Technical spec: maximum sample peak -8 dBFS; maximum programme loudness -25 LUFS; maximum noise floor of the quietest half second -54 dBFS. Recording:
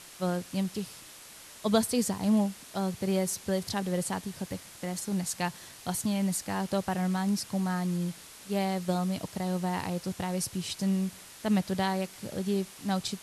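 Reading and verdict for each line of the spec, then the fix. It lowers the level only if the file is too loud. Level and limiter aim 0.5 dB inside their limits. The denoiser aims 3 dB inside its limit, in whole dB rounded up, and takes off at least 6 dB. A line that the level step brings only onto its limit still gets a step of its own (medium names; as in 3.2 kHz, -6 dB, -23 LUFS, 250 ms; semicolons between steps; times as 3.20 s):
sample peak -11.5 dBFS: pass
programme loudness -31.0 LUFS: pass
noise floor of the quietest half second -49 dBFS: fail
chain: noise reduction 8 dB, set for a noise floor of -49 dBFS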